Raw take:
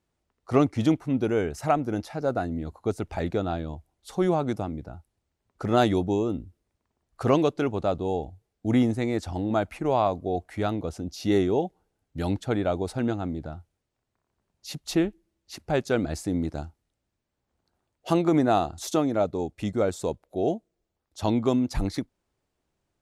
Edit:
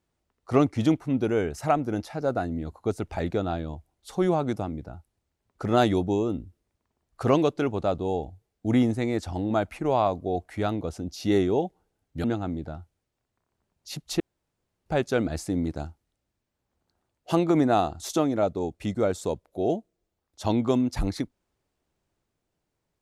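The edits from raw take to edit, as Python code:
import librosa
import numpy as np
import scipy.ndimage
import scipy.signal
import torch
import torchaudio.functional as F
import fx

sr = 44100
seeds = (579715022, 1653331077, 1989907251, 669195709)

y = fx.edit(x, sr, fx.cut(start_s=12.24, length_s=0.78),
    fx.room_tone_fill(start_s=14.98, length_s=0.66), tone=tone)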